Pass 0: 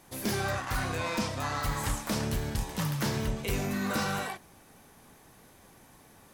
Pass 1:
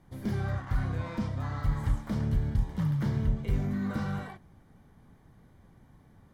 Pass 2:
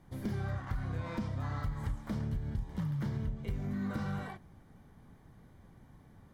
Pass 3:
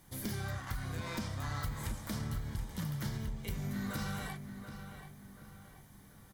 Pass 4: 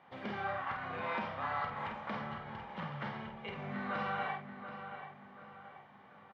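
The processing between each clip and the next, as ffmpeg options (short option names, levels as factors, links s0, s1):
-af "bass=f=250:g=14,treble=f=4000:g=-13,bandreject=f=2600:w=6,volume=0.398"
-af "acompressor=threshold=0.0251:ratio=6"
-filter_complex "[0:a]crystalizer=i=7:c=0,asplit=2[s0][s1];[s1]adelay=731,lowpass=f=3200:p=1,volume=0.355,asplit=2[s2][s3];[s3]adelay=731,lowpass=f=3200:p=1,volume=0.42,asplit=2[s4][s5];[s5]adelay=731,lowpass=f=3200:p=1,volume=0.42,asplit=2[s6][s7];[s7]adelay=731,lowpass=f=3200:p=1,volume=0.42,asplit=2[s8][s9];[s9]adelay=731,lowpass=f=3200:p=1,volume=0.42[s10];[s0][s2][s4][s6][s8][s10]amix=inputs=6:normalize=0,volume=0.668"
-filter_complex "[0:a]highpass=270,equalizer=f=310:t=q:w=4:g=-9,equalizer=f=550:t=q:w=4:g=4,equalizer=f=810:t=q:w=4:g=8,equalizer=f=1200:t=q:w=4:g=6,equalizer=f=2700:t=q:w=4:g=5,lowpass=f=2800:w=0.5412,lowpass=f=2800:w=1.3066,asplit=2[s0][s1];[s1]adelay=49,volume=0.473[s2];[s0][s2]amix=inputs=2:normalize=0,volume=1.33"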